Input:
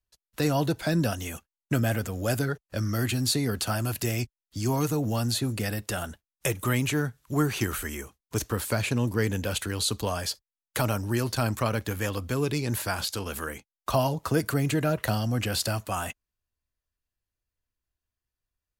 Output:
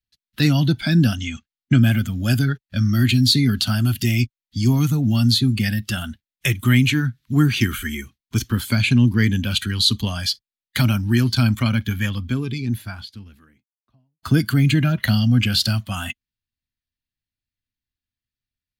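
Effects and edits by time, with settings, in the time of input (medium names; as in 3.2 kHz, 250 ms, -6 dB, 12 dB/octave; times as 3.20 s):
1.16–1.83 s: steep low-pass 7.9 kHz 48 dB/octave
11.66–14.23 s: studio fade out
whole clip: spectral noise reduction 10 dB; ten-band graphic EQ 125 Hz +7 dB, 250 Hz +10 dB, 500 Hz -11 dB, 1 kHz -7 dB, 2 kHz +7 dB, 4 kHz +10 dB, 8 kHz -6 dB; trim +3.5 dB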